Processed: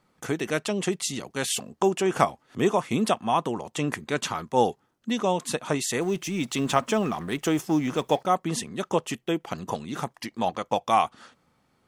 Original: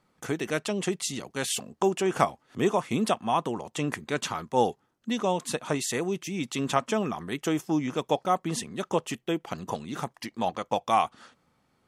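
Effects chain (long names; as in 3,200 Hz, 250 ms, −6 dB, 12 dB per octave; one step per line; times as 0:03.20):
0:06.01–0:08.23: mu-law and A-law mismatch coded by mu
level +2 dB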